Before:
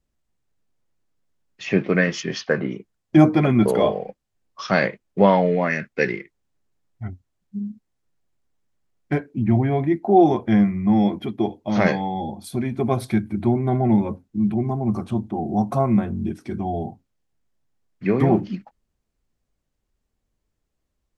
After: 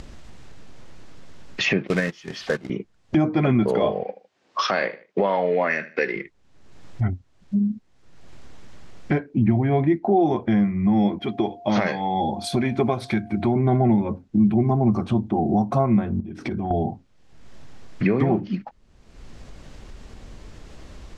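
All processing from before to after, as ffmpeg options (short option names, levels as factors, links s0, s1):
-filter_complex "[0:a]asettb=1/sr,asplit=3[s0][s1][s2];[s0]atrim=end=1.874[s3];[s1]atrim=start=1.87:end=2.7,asetpts=PTS-STARTPTS,afade=t=in:d=0.004:c=qsin,afade=t=out:st=0.826:d=0.004:c=qsin,aeval=exprs='val(0)+0.5*0.0266*sgn(val(0))':c=same,agate=range=0.112:threshold=0.0891:ratio=16:release=100:detection=peak,acrusher=bits=3:mode=log:mix=0:aa=0.000001[s4];[s2]atrim=start=2.696[s5];[s3][s4]acrossfade=d=0.004:c1=hsin:c2=qsin[s6];[s6][s5]acrossfade=d=0.004:c1=qsin:c2=hsin,asettb=1/sr,asplit=3[s7][s8][s9];[s7]atrim=end=4.034[s10];[s8]atrim=start=4.03:end=6.16,asetpts=PTS-STARTPTS,afade=t=in:d=0.004:c=qsin,afade=t=out:st=2.126:d=0.004:c=qsin,highpass=330,lowpass=6400,aecho=1:1:77|154:0.112|0.0236,atrim=end_sample=93933[s11];[s9]atrim=start=6.156[s12];[s10][s11]acrossfade=d=0.004:c1=hsin:c2=qsin[s13];[s13][s12]acrossfade=d=0.004:c1=qsin:c2=hsin,asettb=1/sr,asplit=3[s14][s15][s16];[s14]atrim=end=11.194[s17];[s15]atrim=start=11.19:end=13.56,asetpts=PTS-STARTPTS,afade=t=in:d=0.004:c=qsin,afade=t=out:st=2.366:d=0.004:c=qsin,lowshelf=f=420:g=-7.5,aeval=exprs='val(0)+0.00355*sin(2*PI*700*n/s)':c=same[s18];[s16]atrim=start=13.556[s19];[s17][s18]acrossfade=d=0.004:c1=hsin:c2=qsin[s20];[s20][s19]acrossfade=d=0.004:c1=qsin:c2=hsin,asettb=1/sr,asplit=3[s21][s22][s23];[s21]atrim=end=16.204[s24];[s22]atrim=start=16.2:end=16.71,asetpts=PTS-STARTPTS,afade=t=in:d=0.004:c=qsin,afade=t=out:st=0.506:d=0.004:c=qsin,acompressor=threshold=0.01:ratio=8:attack=3.2:release=140:knee=1:detection=peak,highshelf=f=5300:g=-7[s25];[s23]atrim=start=16.706[s26];[s24][s25]acrossfade=d=0.004:c1=hsin:c2=qsin[s27];[s27][s26]acrossfade=d=0.004:c1=qsin:c2=hsin,acompressor=mode=upward:threshold=0.126:ratio=2.5,lowpass=5600,alimiter=limit=0.2:level=0:latency=1:release=363,volume=1.5"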